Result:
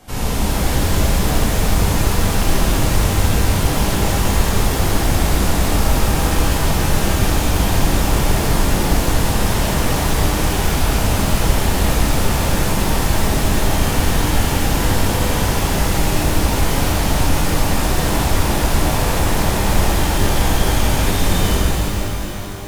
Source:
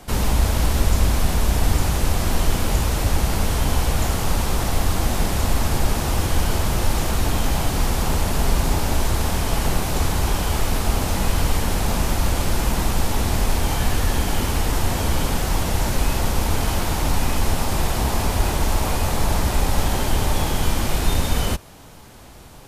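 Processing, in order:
reverb with rising layers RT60 3.6 s, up +12 semitones, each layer −8 dB, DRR −8.5 dB
level −5 dB

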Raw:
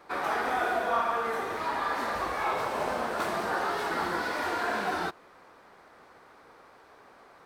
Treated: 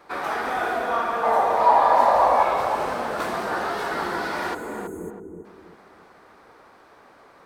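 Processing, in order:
0:01.23–0:02.43: flat-topped bell 740 Hz +14.5 dB 1.2 octaves
0:04.54–0:05.45: time-frequency box erased 510–6,300 Hz
feedback echo with a low-pass in the loop 326 ms, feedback 36%, low-pass 1,100 Hz, level −4 dB
level +2.5 dB

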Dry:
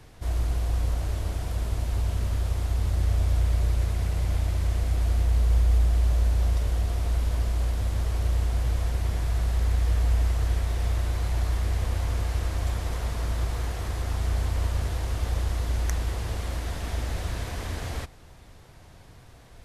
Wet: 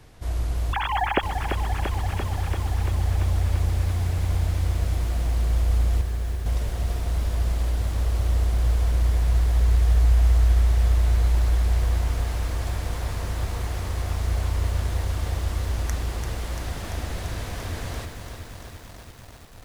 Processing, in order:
0:00.73–0:01.23: three sine waves on the formant tracks
0:06.01–0:06.46: pair of resonant band-passes 800 Hz, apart 2.1 octaves
feedback echo at a low word length 341 ms, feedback 80%, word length 8 bits, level −7 dB

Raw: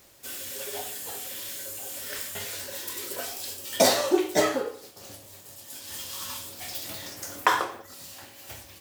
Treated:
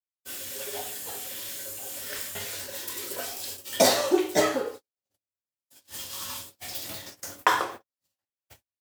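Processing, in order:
noise gate −38 dBFS, range −55 dB

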